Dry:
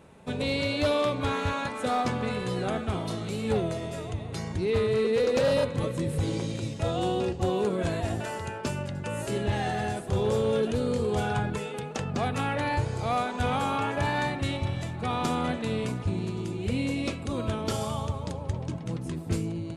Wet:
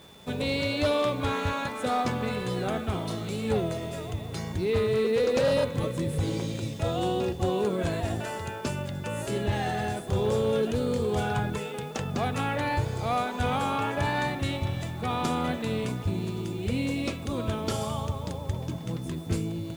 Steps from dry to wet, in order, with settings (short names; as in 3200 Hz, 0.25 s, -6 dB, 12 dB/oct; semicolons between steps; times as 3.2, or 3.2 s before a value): bit-crush 9-bit; whine 3500 Hz -54 dBFS